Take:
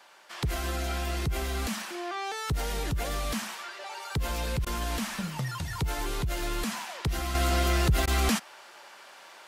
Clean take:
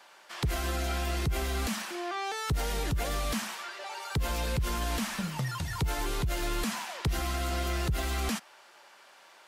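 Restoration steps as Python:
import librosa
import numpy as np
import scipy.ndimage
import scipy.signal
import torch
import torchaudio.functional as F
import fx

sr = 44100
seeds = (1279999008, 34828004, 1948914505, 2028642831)

y = fx.fix_interpolate(x, sr, at_s=(4.65, 8.06), length_ms=13.0)
y = fx.gain(y, sr, db=fx.steps((0.0, 0.0), (7.35, -6.0)))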